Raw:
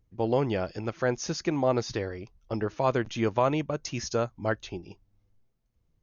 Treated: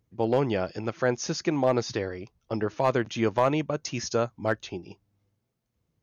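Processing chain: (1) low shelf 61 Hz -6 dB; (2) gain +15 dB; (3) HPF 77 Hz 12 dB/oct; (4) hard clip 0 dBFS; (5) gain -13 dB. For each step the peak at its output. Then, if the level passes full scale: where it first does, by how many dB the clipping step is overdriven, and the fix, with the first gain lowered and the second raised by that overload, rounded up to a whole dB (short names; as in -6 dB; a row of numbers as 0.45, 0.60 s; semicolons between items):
-11.0, +4.0, +5.0, 0.0, -13.0 dBFS; step 2, 5.0 dB; step 2 +10 dB, step 5 -8 dB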